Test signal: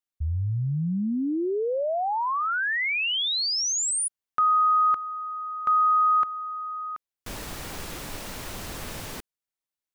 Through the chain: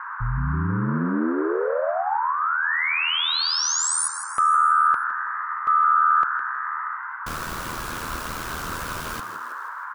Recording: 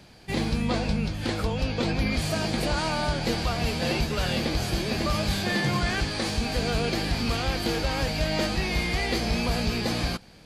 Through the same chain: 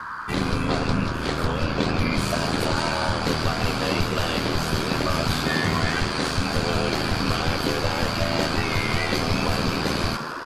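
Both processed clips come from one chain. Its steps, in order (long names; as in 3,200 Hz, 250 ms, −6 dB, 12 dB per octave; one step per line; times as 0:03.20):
echo with shifted repeats 160 ms, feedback 56%, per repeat +130 Hz, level −11 dB
ring modulation 40 Hz
noise in a band 940–1,600 Hz −39 dBFS
level +5 dB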